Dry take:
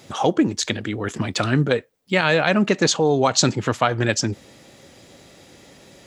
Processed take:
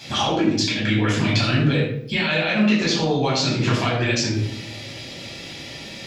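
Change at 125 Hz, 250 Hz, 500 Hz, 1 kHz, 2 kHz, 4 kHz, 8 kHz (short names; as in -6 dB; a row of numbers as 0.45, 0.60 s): +3.0, +1.5, -3.5, -2.5, +0.5, +2.5, -5.0 dB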